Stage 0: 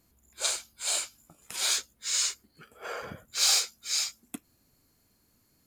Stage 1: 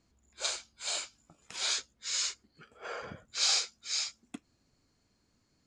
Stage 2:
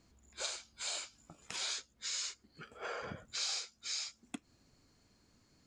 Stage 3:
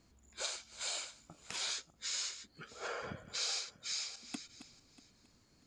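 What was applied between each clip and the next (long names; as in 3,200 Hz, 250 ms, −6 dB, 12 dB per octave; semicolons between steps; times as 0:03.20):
low-pass filter 6,900 Hz 24 dB per octave; level −3 dB
downward compressor 3 to 1, threshold −44 dBFS, peak gain reduction 14.5 dB; level +4 dB
feedback delay that plays each chunk backwards 320 ms, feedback 41%, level −12 dB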